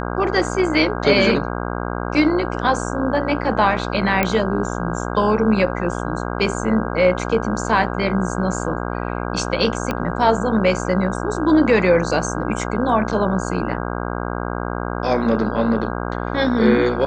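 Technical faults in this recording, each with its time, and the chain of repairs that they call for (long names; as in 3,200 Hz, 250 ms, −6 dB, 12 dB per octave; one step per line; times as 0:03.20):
mains buzz 60 Hz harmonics 27 −25 dBFS
0:04.23: click −4 dBFS
0:09.91: click −8 dBFS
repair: click removal
hum removal 60 Hz, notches 27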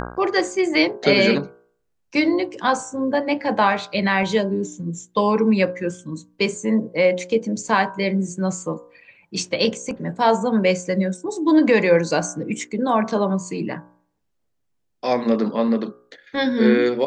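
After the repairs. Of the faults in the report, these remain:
0:09.91: click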